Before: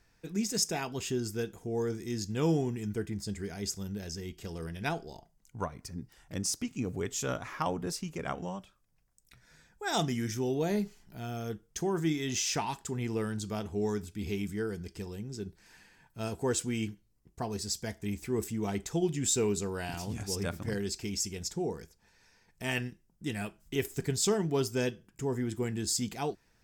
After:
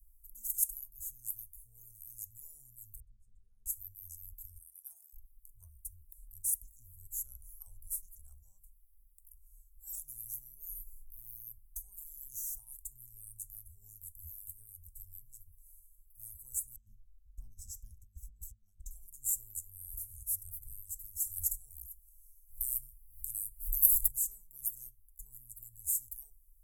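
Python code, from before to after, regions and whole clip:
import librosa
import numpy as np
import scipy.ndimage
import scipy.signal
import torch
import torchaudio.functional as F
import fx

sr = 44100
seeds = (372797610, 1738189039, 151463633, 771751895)

y = fx.chain(x, sr, fx.lowpass(hz=1400.0, slope=12),
    fx.fixed_phaser(hz=450.0, stages=8), at=(3.0, 3.66))
y = fx.chain(y, sr, fx.highpass(hz=770.0, slope=24),
    fx.high_shelf(hz=10000.0, db=-4.5),
    fx.sustainer(db_per_s=90.0), at=(4.58, 5.13))
y = fx.chain(y, sr, fx.curve_eq(hz=(120.0, 210.0, 800.0, 3300.0, 6100.0, 10000.0), db=(0, 13, -8, 6, -1, -21)),
    fx.over_compress(threshold_db=-30.0, ratio=-0.5), at=(16.76, 18.91))
y = fx.bass_treble(y, sr, bass_db=2, treble_db=8, at=(21.24, 24.07), fade=0.02)
y = fx.dmg_buzz(y, sr, base_hz=100.0, harmonics=8, level_db=-47.0, tilt_db=-5, odd_only=False, at=(21.24, 24.07), fade=0.02)
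y = fx.pre_swell(y, sr, db_per_s=78.0, at=(21.24, 24.07), fade=0.02)
y = scipy.signal.sosfilt(scipy.signal.cheby2(4, 60, [150.0, 4900.0], 'bandstop', fs=sr, output='sos'), y)
y = fx.band_shelf(y, sr, hz=7100.0, db=9.5, octaves=1.7)
y = fx.hum_notches(y, sr, base_hz=50, count=4)
y = F.gain(torch.from_numpy(y), 12.5).numpy()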